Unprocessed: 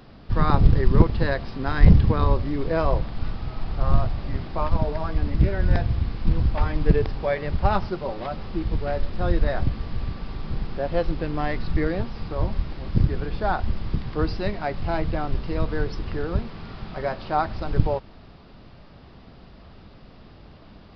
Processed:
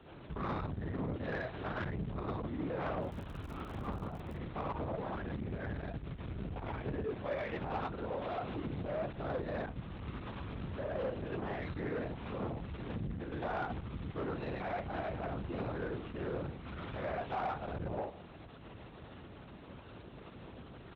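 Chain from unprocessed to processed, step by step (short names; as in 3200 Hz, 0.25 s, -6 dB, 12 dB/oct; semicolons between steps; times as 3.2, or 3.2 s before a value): speakerphone echo 0.16 s, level -23 dB; non-linear reverb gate 0.13 s rising, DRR -4.5 dB; LPC vocoder at 8 kHz whisper; 3.01–4.35 crackle 64/s -29 dBFS; compressor 2.5:1, threshold -27 dBFS, peak gain reduction 15.5 dB; soft clip -22.5 dBFS, distortion -13 dB; HPF 45 Hz; low shelf 88 Hz -7.5 dB; gain -7 dB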